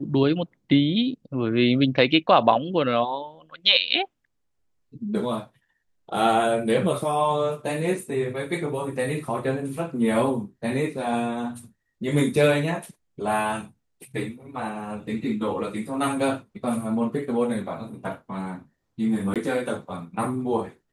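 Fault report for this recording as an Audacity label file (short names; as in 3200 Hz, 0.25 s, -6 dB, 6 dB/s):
19.340000	19.360000	gap 17 ms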